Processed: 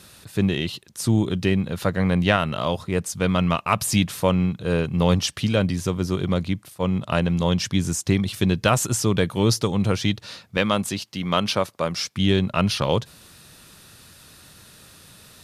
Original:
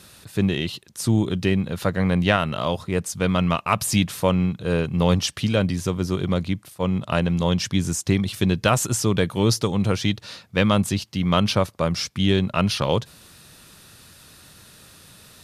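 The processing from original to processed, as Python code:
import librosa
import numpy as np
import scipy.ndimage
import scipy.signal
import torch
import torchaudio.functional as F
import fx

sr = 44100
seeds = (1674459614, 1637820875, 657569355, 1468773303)

y = fx.highpass(x, sr, hz=280.0, slope=6, at=(10.57, 12.17))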